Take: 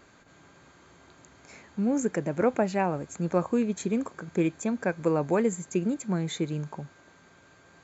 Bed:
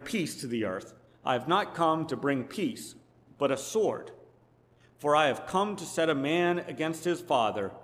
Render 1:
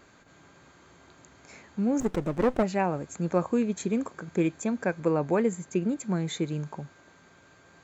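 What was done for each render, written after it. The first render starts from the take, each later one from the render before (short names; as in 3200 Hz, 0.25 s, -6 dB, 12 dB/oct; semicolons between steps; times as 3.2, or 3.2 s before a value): 2–2.63 running maximum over 17 samples; 5–5.98 air absorption 55 m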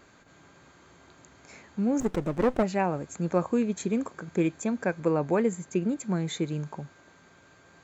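nothing audible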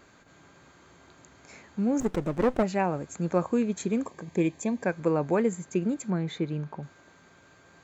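4.05–4.86 Butterworth band-stop 1400 Hz, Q 3.2; 6.1–6.83 air absorption 160 m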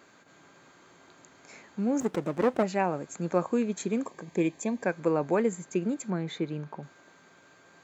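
Bessel high-pass 190 Hz, order 2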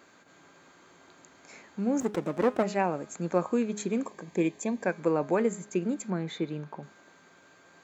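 bell 130 Hz -7 dB 0.24 oct; de-hum 208.2 Hz, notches 27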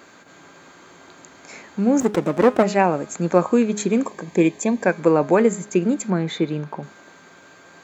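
gain +10 dB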